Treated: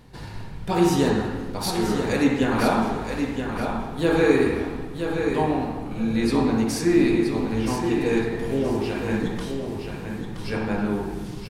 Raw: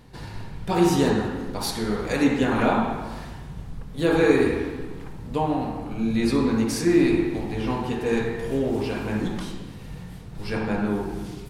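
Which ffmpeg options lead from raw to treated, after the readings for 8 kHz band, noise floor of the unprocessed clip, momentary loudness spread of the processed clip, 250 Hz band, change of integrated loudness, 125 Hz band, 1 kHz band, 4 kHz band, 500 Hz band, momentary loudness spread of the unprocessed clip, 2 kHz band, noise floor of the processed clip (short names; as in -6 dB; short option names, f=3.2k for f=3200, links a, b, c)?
+1.0 dB, -39 dBFS, 11 LU, +1.0 dB, 0.0 dB, +1.0 dB, +1.0 dB, +1.0 dB, +1.0 dB, 19 LU, +1.0 dB, -35 dBFS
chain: -af "aecho=1:1:973|1946|2919:0.473|0.123|0.032"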